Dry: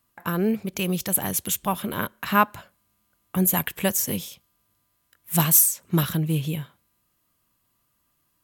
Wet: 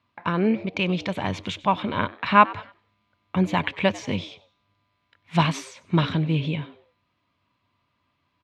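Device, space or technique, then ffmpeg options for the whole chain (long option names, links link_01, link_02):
frequency-shifting delay pedal into a guitar cabinet: -filter_complex "[0:a]asplit=4[link_01][link_02][link_03][link_04];[link_02]adelay=95,afreqshift=120,volume=-20dB[link_05];[link_03]adelay=190,afreqshift=240,volume=-28.6dB[link_06];[link_04]adelay=285,afreqshift=360,volume=-37.3dB[link_07];[link_01][link_05][link_06][link_07]amix=inputs=4:normalize=0,highpass=75,equalizer=frequency=94:width_type=q:width=4:gain=10,equalizer=frequency=260:width_type=q:width=4:gain=4,equalizer=frequency=600:width_type=q:width=4:gain=4,equalizer=frequency=970:width_type=q:width=4:gain=7,equalizer=frequency=2300:width_type=q:width=4:gain=9,equalizer=frequency=3700:width_type=q:width=4:gain=4,lowpass=frequency=4300:width=0.5412,lowpass=frequency=4300:width=1.3066"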